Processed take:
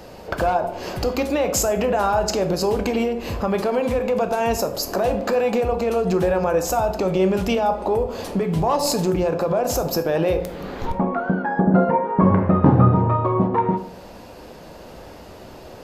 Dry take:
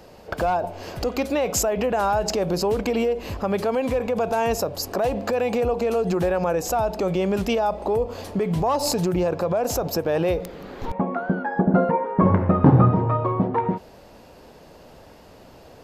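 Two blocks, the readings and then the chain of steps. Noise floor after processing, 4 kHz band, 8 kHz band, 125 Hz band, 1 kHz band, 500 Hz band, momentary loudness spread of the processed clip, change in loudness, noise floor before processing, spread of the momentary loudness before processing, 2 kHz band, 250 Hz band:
−41 dBFS, +2.0 dB, +2.0 dB, +1.5 dB, +2.5 dB, +2.0 dB, 8 LU, +2.0 dB, −47 dBFS, 8 LU, +2.0 dB, +2.0 dB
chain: in parallel at +1.5 dB: downward compressor, threshold −33 dBFS, peak gain reduction 22 dB
on the sum: dense smooth reverb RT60 0.71 s, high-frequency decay 0.55×, DRR 6.5 dB
level −1 dB

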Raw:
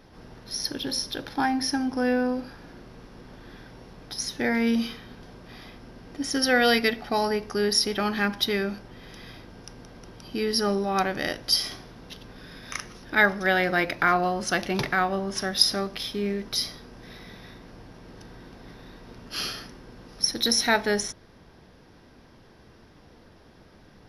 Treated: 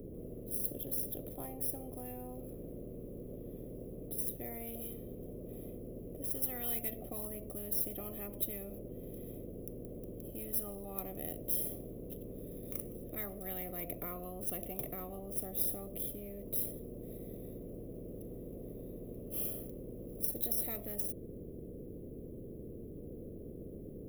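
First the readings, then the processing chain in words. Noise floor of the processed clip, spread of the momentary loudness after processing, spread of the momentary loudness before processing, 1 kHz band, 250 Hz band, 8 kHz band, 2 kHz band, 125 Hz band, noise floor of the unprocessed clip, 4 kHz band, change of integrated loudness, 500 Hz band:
−48 dBFS, 14 LU, 22 LU, −24.5 dB, −15.0 dB, −10.0 dB, −31.5 dB, −7.5 dB, −53 dBFS, −30.5 dB, −14.5 dB, −15.0 dB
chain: running median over 3 samples
inverse Chebyshev band-stop filter 810–8,300 Hz, stop band 40 dB
every bin compressed towards the loudest bin 10 to 1
level +2.5 dB

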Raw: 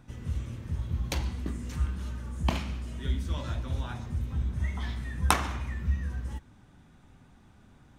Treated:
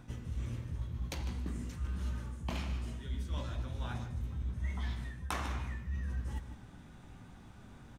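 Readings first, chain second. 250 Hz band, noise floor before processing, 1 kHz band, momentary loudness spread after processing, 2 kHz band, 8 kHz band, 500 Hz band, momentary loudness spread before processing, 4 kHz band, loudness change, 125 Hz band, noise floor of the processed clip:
−6.0 dB, −57 dBFS, −10.0 dB, 16 LU, −8.0 dB, −11.5 dB, −7.0 dB, 8 LU, −8.5 dB, −6.5 dB, −6.0 dB, −54 dBFS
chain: reversed playback
downward compressor 6 to 1, threshold −39 dBFS, peak gain reduction 21 dB
reversed playback
double-tracking delay 17 ms −12 dB
slap from a distant wall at 26 metres, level −11 dB
level +3 dB

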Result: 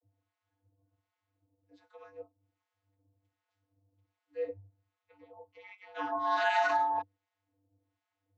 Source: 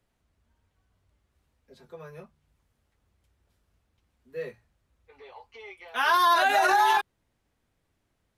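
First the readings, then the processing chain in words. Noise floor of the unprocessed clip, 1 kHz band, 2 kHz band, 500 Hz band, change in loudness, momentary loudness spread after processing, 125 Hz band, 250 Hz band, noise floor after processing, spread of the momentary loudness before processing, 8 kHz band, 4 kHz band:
−76 dBFS, −8.0 dB, −9.0 dB, −3.5 dB, −9.0 dB, 23 LU, −7.0 dB, −4.5 dB, below −85 dBFS, 18 LU, below −15 dB, −13.0 dB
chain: channel vocoder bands 32, square 98.1 Hz
two-band tremolo in antiphase 1.3 Hz, depth 100%, crossover 770 Hz

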